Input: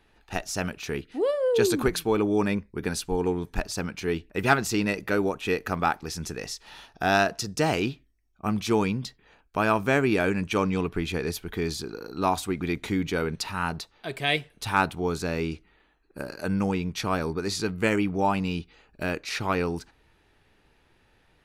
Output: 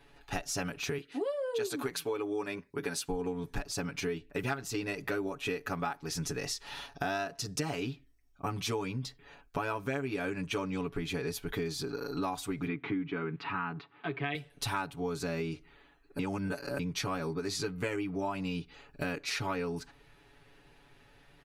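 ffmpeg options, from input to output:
-filter_complex "[0:a]asettb=1/sr,asplit=3[a][b][c];[a]atrim=end=0.984[d];[b]atrim=start=0.98:end=3.09,asetpts=PTS-STARTPTS,afade=t=in:d=0.004:c=qsin,afade=t=out:st=2.106:d=0.004:c=qsin,highpass=f=340:p=1[e];[c]atrim=start=3.086[f];[d][e]acrossfade=d=0.004:c1=hsin:c2=qsin[g];[g][f]acrossfade=d=0.004:c1=qsin:c2=hsin,asettb=1/sr,asplit=3[h][i][j];[h]atrim=end=12.674[k];[i]atrim=start=12.67:end=14.35,asetpts=PTS-STARTPTS,afade=t=in:d=0.004:c=qsin,afade=t=out:st=1.676:d=0.004:c=qsin,highpass=f=110:w=0.5412,highpass=f=110:w=1.3066,equalizer=f=310:t=q:w=4:g=5,equalizer=f=570:t=q:w=4:g=-10,equalizer=f=1.2k:t=q:w=4:g=4,lowpass=f=2.8k:w=0.5412,lowpass=f=2.8k:w=1.3066[l];[j]atrim=start=14.346[m];[k][l]acrossfade=d=0.004:c1=hsin:c2=qsin[n];[n][m]acrossfade=d=0.004:c1=qsin:c2=hsin,asplit=3[o][p][q];[o]atrim=end=16.192[r];[p]atrim=start=16.188:end=16.792,asetpts=PTS-STARTPTS,areverse[s];[q]atrim=start=16.788[t];[r][s]acrossfade=d=0.004:c1=hsin:c2=hsin[u];[u][t]acrossfade=d=0.004:c1=hsin:c2=hsin,aecho=1:1:7.1:0.97,acompressor=threshold=-32dB:ratio=6"

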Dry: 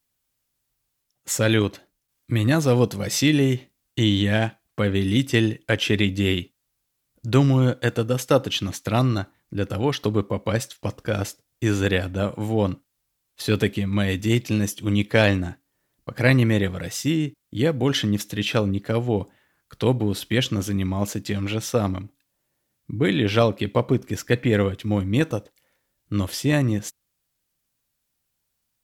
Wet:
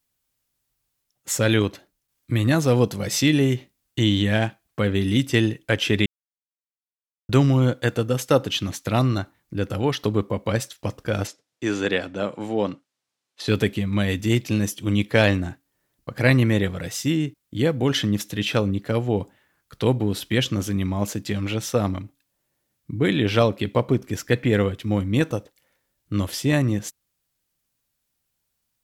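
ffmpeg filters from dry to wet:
-filter_complex "[0:a]asettb=1/sr,asplit=3[a][b][c];[a]atrim=end=11.274[d];[b]atrim=start=11.27:end=13.48,asetpts=PTS-STARTPTS,afade=t=in:d=0.004:c=qsin,afade=t=out:st=2.206:d=0.004:c=qsin,highpass=220,lowpass=6.7k[e];[c]atrim=start=13.476[f];[d][e]acrossfade=d=0.004:c1=hsin:c2=qsin[g];[g][f]acrossfade=d=0.004:c1=qsin:c2=hsin,asplit=3[h][i][j];[h]atrim=end=6.06,asetpts=PTS-STARTPTS,afade=t=out:st=6.056:d=0.004:c=hsin[k];[i]atrim=start=6.06:end=7.29,asetpts=PTS-STARTPTS,volume=0[l];[j]atrim=start=7.29,asetpts=PTS-STARTPTS,afade=t=in:d=0.004:c=hsin[m];[k][l][m]concat=n=3:v=0:a=1"

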